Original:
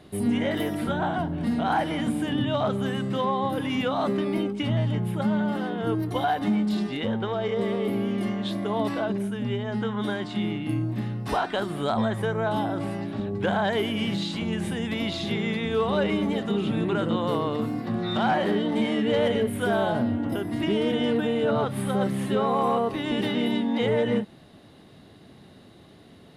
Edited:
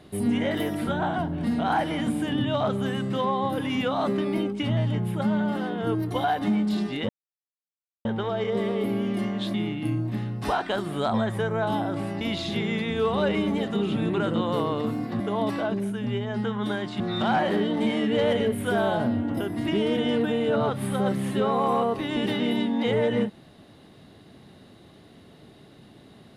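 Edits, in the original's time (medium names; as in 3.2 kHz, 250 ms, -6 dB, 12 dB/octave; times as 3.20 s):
7.09 s: insert silence 0.96 s
8.58–10.38 s: move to 17.95 s
13.05–14.96 s: delete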